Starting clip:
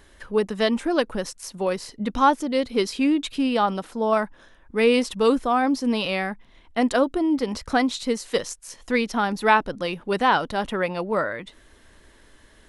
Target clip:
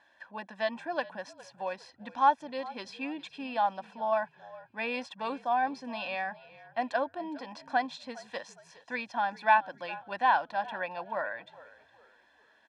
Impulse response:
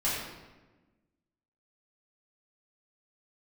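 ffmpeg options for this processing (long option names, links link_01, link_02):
-filter_complex "[0:a]highpass=470,lowpass=5100,highshelf=frequency=3900:gain=-10.5,aecho=1:1:1.2:0.92,asplit=4[link_01][link_02][link_03][link_04];[link_02]adelay=411,afreqshift=-49,volume=-19.5dB[link_05];[link_03]adelay=822,afreqshift=-98,volume=-28.9dB[link_06];[link_04]adelay=1233,afreqshift=-147,volume=-38.2dB[link_07];[link_01][link_05][link_06][link_07]amix=inputs=4:normalize=0,volume=-8dB"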